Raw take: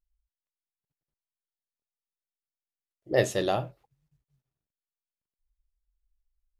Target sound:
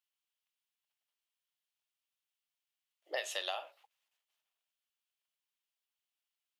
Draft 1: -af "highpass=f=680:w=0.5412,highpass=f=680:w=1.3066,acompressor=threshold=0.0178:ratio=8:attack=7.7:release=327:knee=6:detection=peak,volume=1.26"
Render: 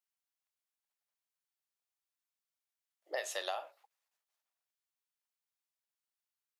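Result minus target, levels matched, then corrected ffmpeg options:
4 kHz band -3.5 dB
-af "highpass=f=680:w=0.5412,highpass=f=680:w=1.3066,equalizer=f=3000:t=o:w=0.73:g=10,acompressor=threshold=0.0178:ratio=8:attack=7.7:release=327:knee=6:detection=peak,volume=1.26"

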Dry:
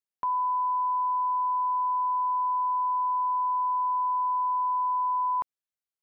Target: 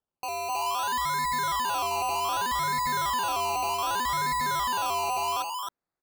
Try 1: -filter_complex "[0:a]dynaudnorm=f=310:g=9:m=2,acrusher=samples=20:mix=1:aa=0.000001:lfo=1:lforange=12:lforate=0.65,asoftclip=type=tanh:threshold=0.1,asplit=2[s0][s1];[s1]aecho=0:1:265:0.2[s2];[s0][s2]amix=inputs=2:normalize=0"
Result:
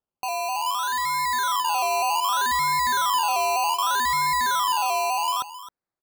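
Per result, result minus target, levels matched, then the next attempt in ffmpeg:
echo-to-direct -12 dB; saturation: distortion -10 dB
-filter_complex "[0:a]dynaudnorm=f=310:g=9:m=2,acrusher=samples=20:mix=1:aa=0.000001:lfo=1:lforange=12:lforate=0.65,asoftclip=type=tanh:threshold=0.1,asplit=2[s0][s1];[s1]aecho=0:1:265:0.794[s2];[s0][s2]amix=inputs=2:normalize=0"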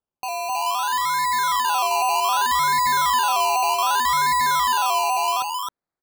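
saturation: distortion -10 dB
-filter_complex "[0:a]dynaudnorm=f=310:g=9:m=2,acrusher=samples=20:mix=1:aa=0.000001:lfo=1:lforange=12:lforate=0.65,asoftclip=type=tanh:threshold=0.0299,asplit=2[s0][s1];[s1]aecho=0:1:265:0.794[s2];[s0][s2]amix=inputs=2:normalize=0"

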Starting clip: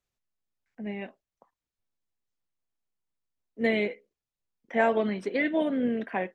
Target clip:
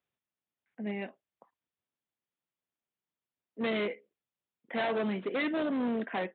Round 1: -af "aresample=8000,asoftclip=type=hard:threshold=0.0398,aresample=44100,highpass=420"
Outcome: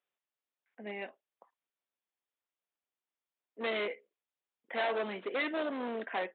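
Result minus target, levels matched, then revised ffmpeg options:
125 Hz band -9.5 dB
-af "aresample=8000,asoftclip=type=hard:threshold=0.0398,aresample=44100,highpass=130"

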